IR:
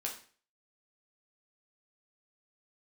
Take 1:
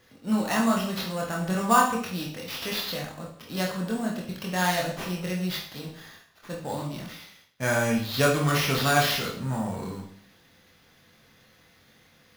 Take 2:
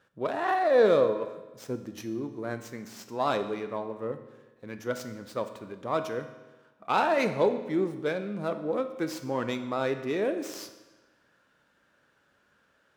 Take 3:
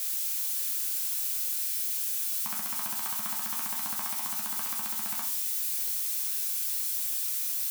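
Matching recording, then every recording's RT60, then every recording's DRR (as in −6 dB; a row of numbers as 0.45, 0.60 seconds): 3; 0.55, 1.2, 0.45 seconds; −2.0, 8.0, −1.0 decibels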